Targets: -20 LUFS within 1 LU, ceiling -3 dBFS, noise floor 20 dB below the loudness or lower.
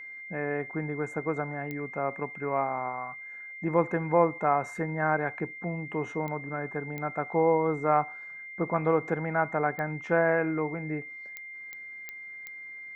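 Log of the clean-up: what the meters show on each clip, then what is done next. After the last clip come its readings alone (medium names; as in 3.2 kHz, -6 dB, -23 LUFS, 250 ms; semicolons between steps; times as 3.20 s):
clicks found 8; steady tone 2.1 kHz; tone level -40 dBFS; loudness -29.5 LUFS; peak level -10.0 dBFS; loudness target -20.0 LUFS
-> de-click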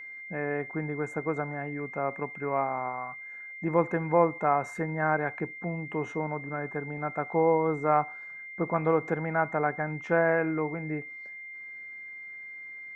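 clicks found 0; steady tone 2.1 kHz; tone level -40 dBFS
-> band-stop 2.1 kHz, Q 30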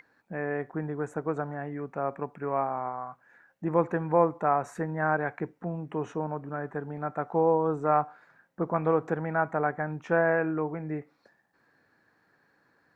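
steady tone not found; loudness -29.5 LUFS; peak level -10.0 dBFS; loudness target -20.0 LUFS
-> trim +9.5 dB; peak limiter -3 dBFS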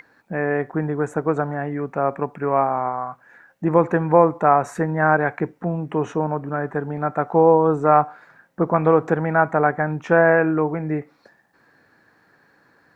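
loudness -20.5 LUFS; peak level -3.0 dBFS; noise floor -60 dBFS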